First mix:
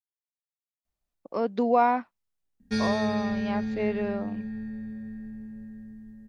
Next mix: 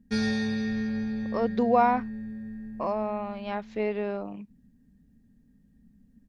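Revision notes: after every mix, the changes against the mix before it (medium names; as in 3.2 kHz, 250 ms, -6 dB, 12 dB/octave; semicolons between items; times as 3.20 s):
background: entry -2.60 s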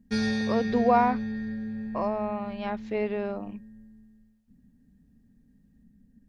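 speech: entry -0.85 s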